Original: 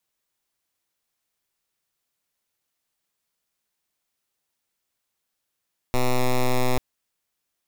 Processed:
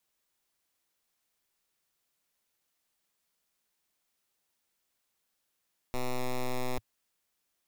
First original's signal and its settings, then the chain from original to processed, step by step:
pulse 126 Hz, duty 8% -19.5 dBFS 0.84 s
wrapped overs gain 28.5 dB; bell 110 Hz -6.5 dB 0.36 oct

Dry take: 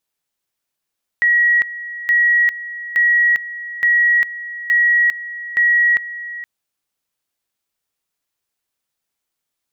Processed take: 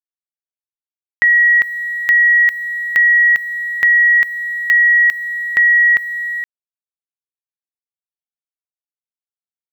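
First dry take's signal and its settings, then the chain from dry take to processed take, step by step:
two-level tone 1910 Hz -10.5 dBFS, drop 15.5 dB, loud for 0.40 s, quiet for 0.47 s, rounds 6
in parallel at +2.5 dB: compressor 5:1, threshold -24 dBFS; on the sum: sample gate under -37.5 dBFS

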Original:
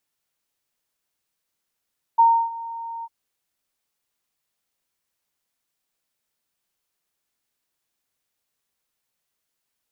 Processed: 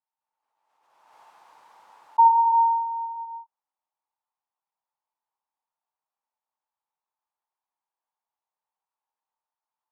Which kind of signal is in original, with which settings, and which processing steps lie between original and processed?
ADSR sine 921 Hz, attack 15 ms, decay 0.301 s, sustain -19.5 dB, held 0.86 s, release 42 ms -10 dBFS
band-pass 900 Hz, Q 6.8; non-linear reverb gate 0.4 s flat, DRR -5 dB; backwards sustainer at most 40 dB/s

